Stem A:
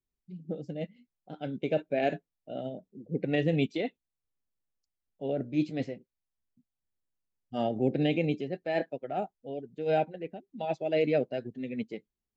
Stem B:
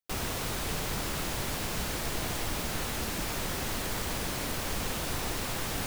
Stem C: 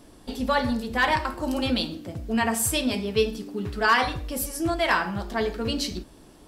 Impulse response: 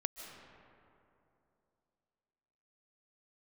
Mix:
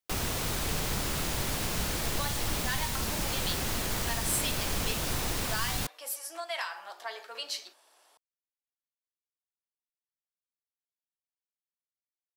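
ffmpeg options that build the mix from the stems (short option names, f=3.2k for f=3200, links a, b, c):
-filter_complex "[1:a]volume=2.5dB[a];[2:a]highpass=f=650:w=0.5412,highpass=f=650:w=1.3066,adelay=1700,volume=-5.5dB[b];[a][b]amix=inputs=2:normalize=0,acrossover=split=190|3000[c][d][e];[d]acompressor=threshold=-34dB:ratio=6[f];[c][f][e]amix=inputs=3:normalize=0"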